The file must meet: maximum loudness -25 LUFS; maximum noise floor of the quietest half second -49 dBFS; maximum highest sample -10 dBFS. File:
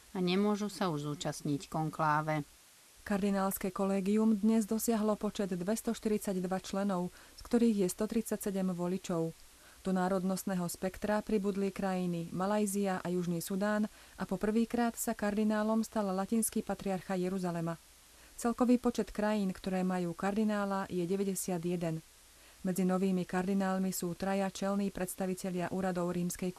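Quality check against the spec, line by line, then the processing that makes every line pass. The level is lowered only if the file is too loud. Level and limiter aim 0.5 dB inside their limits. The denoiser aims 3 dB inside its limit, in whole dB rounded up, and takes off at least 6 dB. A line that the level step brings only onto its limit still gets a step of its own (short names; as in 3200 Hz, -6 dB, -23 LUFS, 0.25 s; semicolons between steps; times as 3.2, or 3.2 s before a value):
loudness -34.0 LUFS: OK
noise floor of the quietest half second -60 dBFS: OK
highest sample -16.5 dBFS: OK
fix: none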